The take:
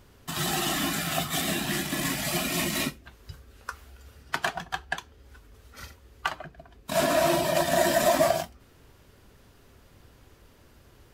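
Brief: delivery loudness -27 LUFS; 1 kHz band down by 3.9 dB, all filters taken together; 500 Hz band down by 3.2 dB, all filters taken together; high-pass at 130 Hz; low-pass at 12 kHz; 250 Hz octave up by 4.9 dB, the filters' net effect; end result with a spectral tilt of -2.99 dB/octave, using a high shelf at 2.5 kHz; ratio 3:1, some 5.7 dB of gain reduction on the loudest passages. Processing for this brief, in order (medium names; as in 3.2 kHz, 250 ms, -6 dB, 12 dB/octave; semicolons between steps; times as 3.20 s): high-pass 130 Hz; low-pass 12 kHz; peaking EQ 250 Hz +8.5 dB; peaking EQ 500 Hz -4.5 dB; peaking EQ 1 kHz -5.5 dB; treble shelf 2.5 kHz +7 dB; compression 3:1, threshold -27 dBFS; trim +2.5 dB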